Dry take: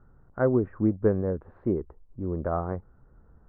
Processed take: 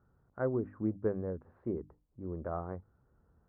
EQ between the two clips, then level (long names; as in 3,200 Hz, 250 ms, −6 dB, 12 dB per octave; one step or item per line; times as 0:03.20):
high-pass filter 51 Hz
mains-hum notches 50/100/150/200/250/300 Hz
−9.0 dB